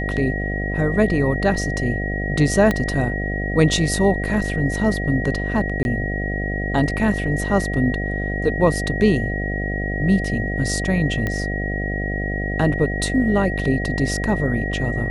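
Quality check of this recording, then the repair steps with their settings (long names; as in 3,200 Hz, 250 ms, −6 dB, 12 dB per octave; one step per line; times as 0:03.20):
mains buzz 50 Hz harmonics 15 −25 dBFS
whistle 1,900 Hz −27 dBFS
0:02.71: click −7 dBFS
0:05.83–0:05.85: drop-out 21 ms
0:11.27: click −11 dBFS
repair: click removal
notch filter 1,900 Hz, Q 30
hum removal 50 Hz, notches 15
repair the gap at 0:05.83, 21 ms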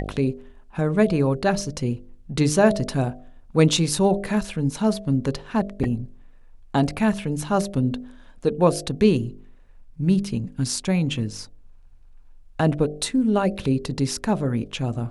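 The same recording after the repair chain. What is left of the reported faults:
0:02.71: click
0:11.27: click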